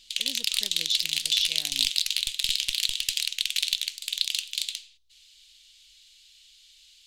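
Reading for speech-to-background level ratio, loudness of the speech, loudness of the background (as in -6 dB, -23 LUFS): -3.5 dB, -29.5 LUFS, -26.0 LUFS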